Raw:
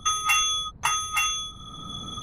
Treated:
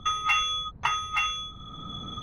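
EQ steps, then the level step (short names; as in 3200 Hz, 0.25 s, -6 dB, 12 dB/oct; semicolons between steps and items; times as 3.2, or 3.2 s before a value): air absorption 280 m; high shelf 3400 Hz +7 dB; 0.0 dB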